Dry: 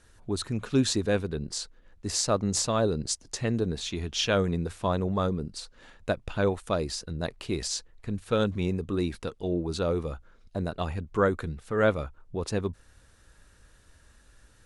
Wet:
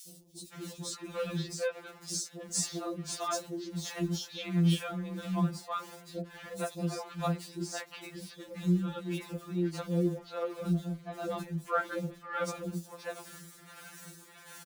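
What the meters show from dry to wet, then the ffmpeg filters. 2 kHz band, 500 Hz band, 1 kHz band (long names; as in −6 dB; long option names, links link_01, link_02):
−6.0 dB, −9.0 dB, −4.0 dB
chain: -filter_complex "[0:a]aeval=exprs='val(0)+0.5*0.0158*sgn(val(0))':channel_layout=same,highpass=frequency=63:width=0.5412,highpass=frequency=63:width=1.3066,tremolo=f=1.5:d=0.68,acrossover=split=480|4000[link_01][link_02][link_03];[link_01]adelay=80[link_04];[link_02]adelay=530[link_05];[link_04][link_05][link_03]amix=inputs=3:normalize=0,afftfilt=real='re*2.83*eq(mod(b,8),0)':imag='im*2.83*eq(mod(b,8),0)':win_size=2048:overlap=0.75"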